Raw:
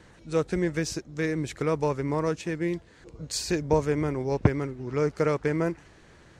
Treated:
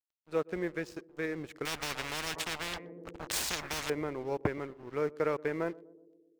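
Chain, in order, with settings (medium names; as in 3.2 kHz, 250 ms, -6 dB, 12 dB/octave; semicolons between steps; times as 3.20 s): tone controls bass -11 dB, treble -12 dB; band-stop 5.9 kHz, Q 18; crossover distortion -46.5 dBFS; short-mantissa float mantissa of 6-bit; band-passed feedback delay 123 ms, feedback 70%, band-pass 310 Hz, level -19 dB; 1.65–3.90 s: spectrum-flattening compressor 10:1; trim -4 dB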